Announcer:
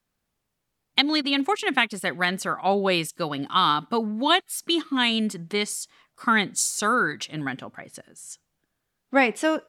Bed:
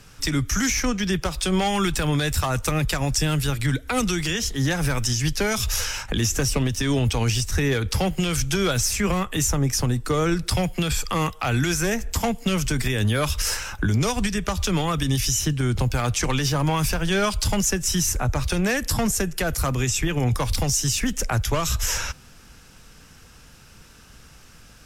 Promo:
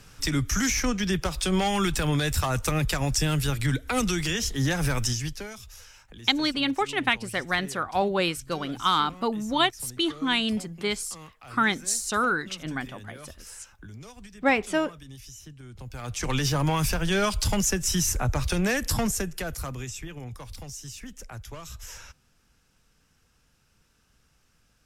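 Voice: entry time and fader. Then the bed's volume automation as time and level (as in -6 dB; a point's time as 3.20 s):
5.30 s, -2.5 dB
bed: 5.07 s -2.5 dB
5.68 s -22.5 dB
15.72 s -22.5 dB
16.36 s -2.5 dB
18.96 s -2.5 dB
20.29 s -17.5 dB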